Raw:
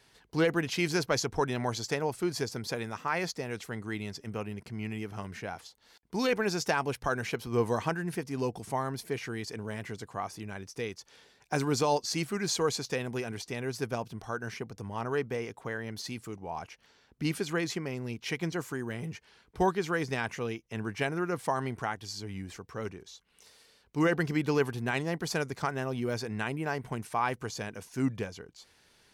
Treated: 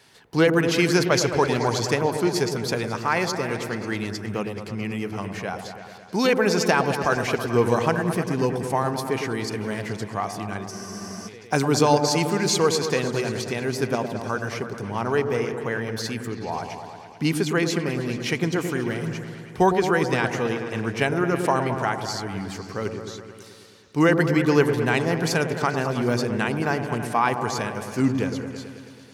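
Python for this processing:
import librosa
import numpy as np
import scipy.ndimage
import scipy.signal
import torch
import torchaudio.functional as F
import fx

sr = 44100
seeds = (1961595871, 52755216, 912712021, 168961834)

y = scipy.signal.sosfilt(scipy.signal.butter(2, 91.0, 'highpass', fs=sr, output='sos'), x)
y = fx.echo_opening(y, sr, ms=108, hz=750, octaves=1, feedback_pct=70, wet_db=-6)
y = fx.spec_freeze(y, sr, seeds[0], at_s=10.72, hold_s=0.56)
y = y * librosa.db_to_amplitude(8.0)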